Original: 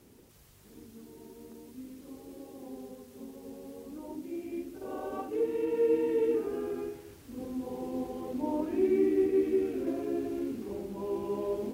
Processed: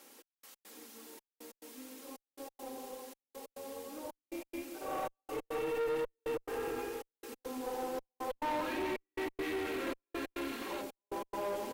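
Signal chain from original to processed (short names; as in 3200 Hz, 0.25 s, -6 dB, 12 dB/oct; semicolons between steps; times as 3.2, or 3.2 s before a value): on a send: feedback echo 0.369 s, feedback 46%, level -9.5 dB; on the sum: spectral gain 8.3–10.82, 850–4500 Hz +7 dB; in parallel at -2.5 dB: limiter -26 dBFS, peak gain reduction 9.5 dB; on the sum: step gate "xx..x.xxx" 139 bpm -60 dB; HPF 670 Hz 12 dB/oct; comb 3.7 ms, depth 49%; tube stage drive 34 dB, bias 0.45; gain +3.5 dB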